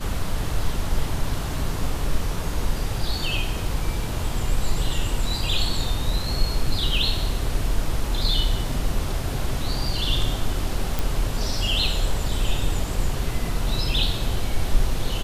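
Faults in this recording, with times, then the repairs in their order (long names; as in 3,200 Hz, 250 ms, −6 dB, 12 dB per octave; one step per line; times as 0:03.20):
0:10.99: click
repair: click removal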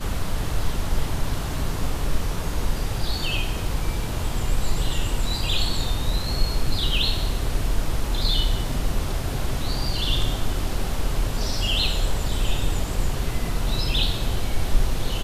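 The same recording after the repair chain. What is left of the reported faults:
none of them is left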